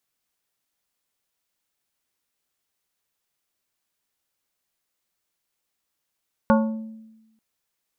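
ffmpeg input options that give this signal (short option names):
-f lavfi -i "aevalsrc='0.2*pow(10,-3*t/1.08)*sin(2*PI*221*t)+0.15*pow(10,-3*t/0.569)*sin(2*PI*552.5*t)+0.112*pow(10,-3*t/0.409)*sin(2*PI*884*t)+0.0841*pow(10,-3*t/0.35)*sin(2*PI*1105*t)+0.0631*pow(10,-3*t/0.291)*sin(2*PI*1436.5*t)':d=0.89:s=44100"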